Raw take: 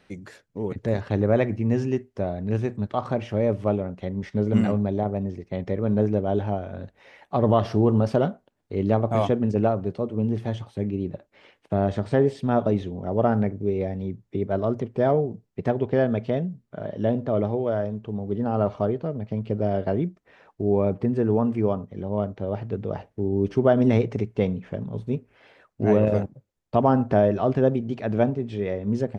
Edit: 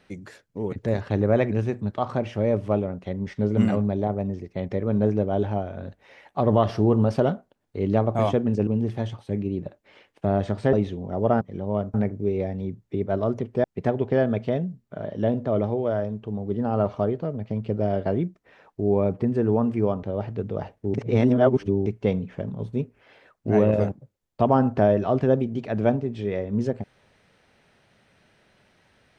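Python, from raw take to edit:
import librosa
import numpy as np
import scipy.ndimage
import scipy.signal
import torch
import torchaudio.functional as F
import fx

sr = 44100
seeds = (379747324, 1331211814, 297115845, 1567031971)

y = fx.edit(x, sr, fx.cut(start_s=1.52, length_s=0.96),
    fx.cut(start_s=9.63, length_s=0.52),
    fx.cut(start_s=12.21, length_s=0.46),
    fx.cut(start_s=15.05, length_s=0.4),
    fx.move(start_s=21.84, length_s=0.53, to_s=13.35),
    fx.reverse_span(start_s=23.28, length_s=0.92), tone=tone)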